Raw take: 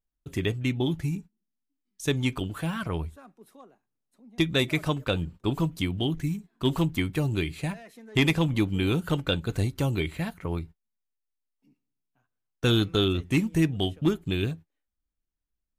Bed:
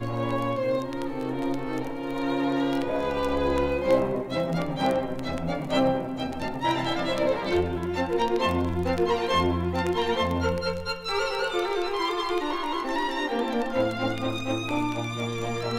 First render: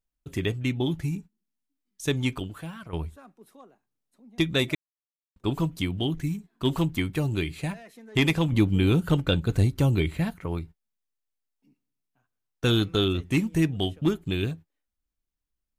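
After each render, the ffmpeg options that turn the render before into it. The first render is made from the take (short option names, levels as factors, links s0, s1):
-filter_complex "[0:a]asettb=1/sr,asplit=3[s0][s1][s2];[s0]atrim=end=8.524[s3];[s1]atrim=start=8.52:end=10.36,asetpts=PTS-STARTPTS,afade=t=in:d=0.004:c=qsin,afade=t=out:st=1.836:d=0.004:c=qsin,lowshelf=f=330:g=6[s4];[s2]atrim=start=10.356[s5];[s3][s4]acrossfade=d=0.004:c1=hsin:c2=qsin[s6];[s6][s5]acrossfade=d=0.004:c1=qsin:c2=hsin,asplit=4[s7][s8][s9][s10];[s7]atrim=end=2.93,asetpts=PTS-STARTPTS,afade=t=out:st=2.31:d=0.62:c=qua:silence=0.281838[s11];[s8]atrim=start=2.93:end=4.75,asetpts=PTS-STARTPTS,afade=t=in:d=0.004:c=hsin:silence=0.281838,afade=t=out:st=1.816:d=0.004:c=hsin[s12];[s9]atrim=start=4.75:end=5.36,asetpts=PTS-STARTPTS,volume=0[s13];[s10]atrim=start=5.36,asetpts=PTS-STARTPTS,afade=t=in:d=0.004:c=hsin[s14];[s11][s12][s13][s14]concat=n=4:v=0:a=1"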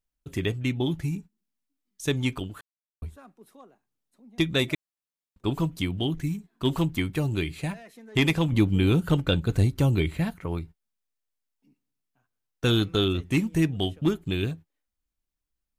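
-filter_complex "[0:a]asplit=3[s0][s1][s2];[s0]atrim=end=2.61,asetpts=PTS-STARTPTS,afade=t=out:st=2.606:d=0.004:c=hsin[s3];[s1]atrim=start=2.61:end=3.02,asetpts=PTS-STARTPTS,volume=0[s4];[s2]atrim=start=3.02,asetpts=PTS-STARTPTS,afade=t=in:d=0.004:c=hsin[s5];[s3][s4][s5]concat=n=3:v=0:a=1"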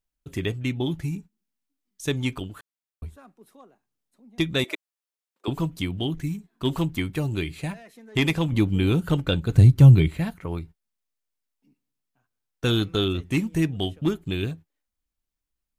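-filter_complex "[0:a]asettb=1/sr,asplit=3[s0][s1][s2];[s0]atrim=end=4.644[s3];[s1]atrim=start=4.64:end=5.48,asetpts=PTS-STARTPTS,afade=t=in:d=0.004:c=qsin,afade=t=out:st=0.836:d=0.004:c=qsin,highpass=f=370:w=0.5412,highpass=f=370:w=1.3066[s4];[s2]atrim=start=5.476[s5];[s3][s4]acrossfade=d=0.004:c1=hsin:c2=qsin[s6];[s6][s5]acrossfade=d=0.004:c1=qsin:c2=hsin,asettb=1/sr,asplit=3[s7][s8][s9];[s7]atrim=end=9.544[s10];[s8]atrim=start=9.54:end=10.08,asetpts=PTS-STARTPTS,afade=t=in:d=0.004:c=qsin,afade=t=out:st=0.536:d=0.004:c=qsin,equalizer=f=130:w=1.5:g=12.5[s11];[s9]atrim=start=10.076[s12];[s10][s11]acrossfade=d=0.004:c1=hsin:c2=qsin[s13];[s13][s12]acrossfade=d=0.004:c1=qsin:c2=hsin"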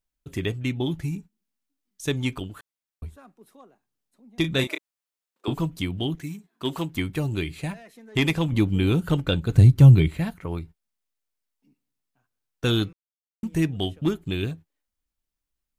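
-filter_complex "[0:a]asettb=1/sr,asplit=3[s0][s1][s2];[s0]atrim=end=4.414[s3];[s1]atrim=start=4.41:end=5.54,asetpts=PTS-STARTPTS,afade=t=in:d=0.004:c=qsin,afade=t=out:st=1.126:d=0.004:c=qsin,asplit=2[s4][s5];[s5]adelay=30,volume=0.447[s6];[s4][s6]amix=inputs=2:normalize=0,atrim=end_sample=49833[s7];[s2]atrim=start=5.536[s8];[s3][s7]acrossfade=d=0.004:c1=hsin:c2=qsin[s9];[s9][s8]acrossfade=d=0.004:c1=qsin:c2=hsin,asettb=1/sr,asplit=3[s10][s11][s12];[s10]atrim=end=6.154[s13];[s11]atrim=start=6.15:end=6.95,asetpts=PTS-STARTPTS,afade=t=in:d=0.004:c=qsin,afade=t=out:st=0.796:d=0.004:c=qsin,highpass=f=290:p=1[s14];[s12]atrim=start=6.946[s15];[s13][s14]acrossfade=d=0.004:c1=hsin:c2=qsin[s16];[s16][s15]acrossfade=d=0.004:c1=qsin:c2=hsin,asplit=3[s17][s18][s19];[s17]atrim=end=12.93,asetpts=PTS-STARTPTS,afade=t=out:st=12.926:d=0.004:c=hsin[s20];[s18]atrim=start=12.93:end=13.43,asetpts=PTS-STARTPTS,volume=0[s21];[s19]atrim=start=13.43,asetpts=PTS-STARTPTS,afade=t=in:d=0.004:c=hsin[s22];[s20][s21][s22]concat=n=3:v=0:a=1"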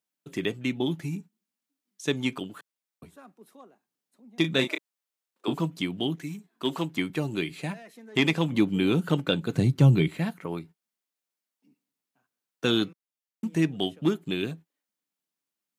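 -filter_complex "[0:a]acrossover=split=8000[s0][s1];[s1]acompressor=threshold=0.00178:ratio=4:attack=1:release=60[s2];[s0][s2]amix=inputs=2:normalize=0,highpass=f=160:w=0.5412,highpass=f=160:w=1.3066"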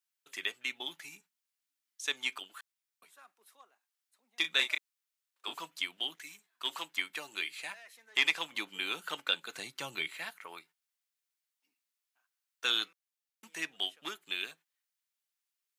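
-af "highpass=1300"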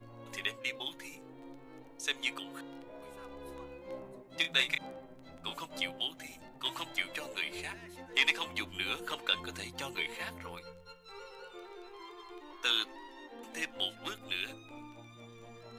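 -filter_complex "[1:a]volume=0.075[s0];[0:a][s0]amix=inputs=2:normalize=0"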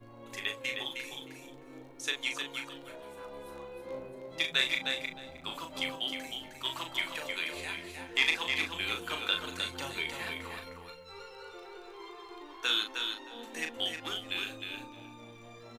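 -filter_complex "[0:a]asplit=2[s0][s1];[s1]adelay=38,volume=0.501[s2];[s0][s2]amix=inputs=2:normalize=0,aecho=1:1:310|620|930:0.531|0.0796|0.0119"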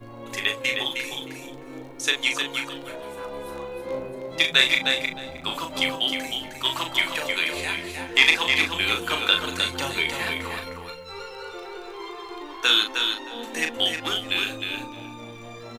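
-af "volume=3.35"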